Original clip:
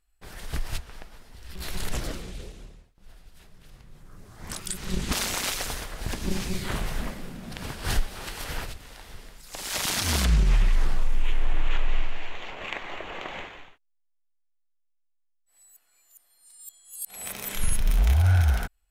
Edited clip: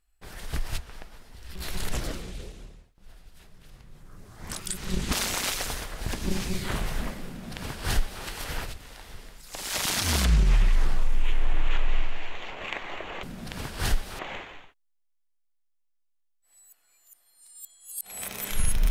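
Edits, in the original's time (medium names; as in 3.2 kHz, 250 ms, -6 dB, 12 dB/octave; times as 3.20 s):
7.28–8.24 s: copy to 13.23 s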